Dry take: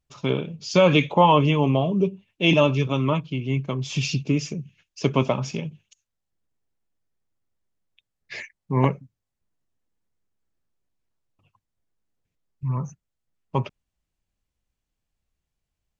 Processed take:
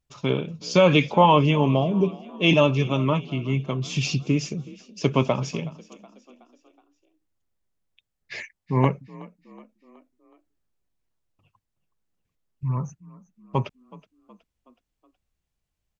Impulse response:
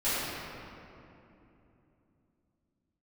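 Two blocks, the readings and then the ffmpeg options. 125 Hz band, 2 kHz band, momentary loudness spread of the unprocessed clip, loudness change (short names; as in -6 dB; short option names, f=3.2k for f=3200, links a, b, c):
0.0 dB, 0.0 dB, 19 LU, 0.0 dB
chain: -filter_complex "[0:a]asplit=5[a][b][c][d][e];[b]adelay=371,afreqshift=39,volume=-21dB[f];[c]adelay=742,afreqshift=78,volume=-27dB[g];[d]adelay=1113,afreqshift=117,volume=-33dB[h];[e]adelay=1484,afreqshift=156,volume=-39.1dB[i];[a][f][g][h][i]amix=inputs=5:normalize=0"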